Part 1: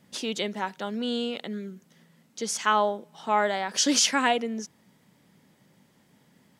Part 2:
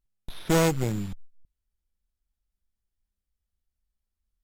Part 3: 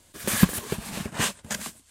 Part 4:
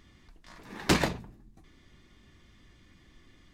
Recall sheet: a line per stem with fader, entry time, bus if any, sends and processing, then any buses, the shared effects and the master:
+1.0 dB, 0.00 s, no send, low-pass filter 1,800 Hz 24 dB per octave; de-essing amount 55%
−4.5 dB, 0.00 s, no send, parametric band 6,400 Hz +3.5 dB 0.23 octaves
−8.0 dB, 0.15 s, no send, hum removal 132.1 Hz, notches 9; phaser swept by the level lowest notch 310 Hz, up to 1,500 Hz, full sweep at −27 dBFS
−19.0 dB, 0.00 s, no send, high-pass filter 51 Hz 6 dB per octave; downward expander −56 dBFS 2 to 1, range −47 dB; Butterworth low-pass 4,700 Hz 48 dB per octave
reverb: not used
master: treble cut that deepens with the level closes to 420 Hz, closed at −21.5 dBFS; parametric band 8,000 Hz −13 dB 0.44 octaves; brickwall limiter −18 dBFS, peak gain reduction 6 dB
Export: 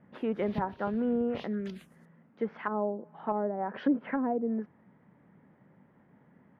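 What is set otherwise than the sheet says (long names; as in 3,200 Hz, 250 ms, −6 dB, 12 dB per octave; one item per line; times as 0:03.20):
stem 2: muted
stem 3 −8.0 dB → −14.0 dB
stem 4: muted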